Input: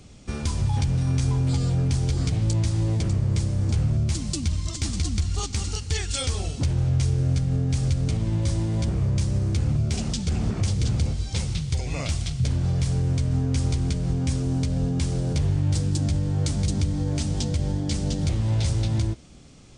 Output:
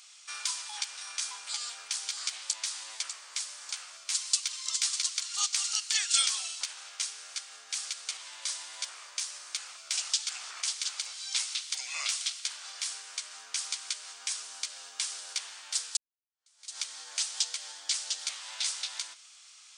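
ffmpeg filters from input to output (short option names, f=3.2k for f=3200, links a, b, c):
-filter_complex "[0:a]asplit=2[a][b];[a]atrim=end=15.97,asetpts=PTS-STARTPTS,afade=t=out:st=15.966:d=0.004:c=hsin[c];[b]atrim=start=15.97,asetpts=PTS-STARTPTS,afade=t=in:d=0.81:c=exp[d];[c][d]concat=n=2:v=0:a=1,highpass=f=1.3k:w=0.5412,highpass=f=1.3k:w=1.3066,equalizer=f=1.9k:t=o:w=1.2:g=-5.5,volume=5.5dB"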